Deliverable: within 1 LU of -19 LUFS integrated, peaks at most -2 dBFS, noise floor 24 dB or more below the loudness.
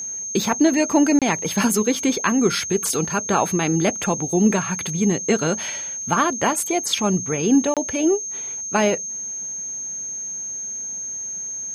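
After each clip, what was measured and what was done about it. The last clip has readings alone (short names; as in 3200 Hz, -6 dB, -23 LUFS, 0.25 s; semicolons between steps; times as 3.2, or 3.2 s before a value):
dropouts 2; longest dropout 27 ms; steady tone 6400 Hz; tone level -27 dBFS; loudness -21.0 LUFS; peak -5.0 dBFS; loudness target -19.0 LUFS
-> interpolate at 1.19/7.74, 27 ms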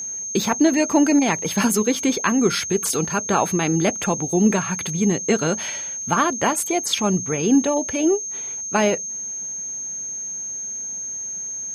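dropouts 0; steady tone 6400 Hz; tone level -27 dBFS
-> notch 6400 Hz, Q 30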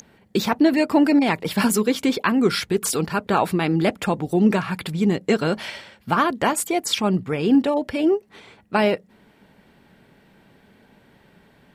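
steady tone none; loudness -21.0 LUFS; peak -5.5 dBFS; loudness target -19.0 LUFS
-> gain +2 dB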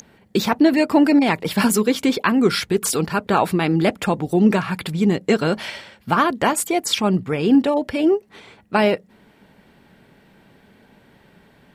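loudness -19.0 LUFS; peak -3.5 dBFS; noise floor -54 dBFS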